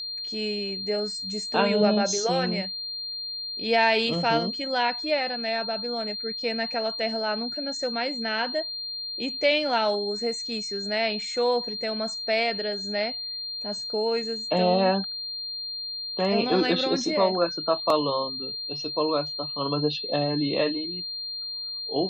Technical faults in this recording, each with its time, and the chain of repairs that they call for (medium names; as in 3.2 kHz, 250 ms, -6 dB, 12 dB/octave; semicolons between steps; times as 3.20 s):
whine 4.2 kHz -31 dBFS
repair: band-stop 4.2 kHz, Q 30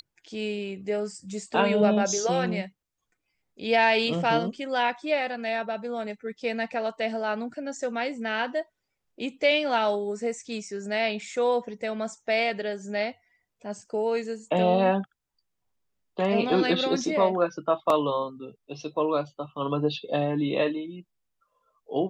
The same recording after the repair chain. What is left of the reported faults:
nothing left